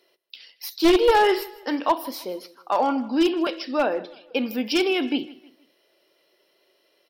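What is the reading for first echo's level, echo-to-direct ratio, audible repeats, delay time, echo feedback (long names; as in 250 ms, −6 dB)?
−20.0 dB, −19.5 dB, 2, 158 ms, 38%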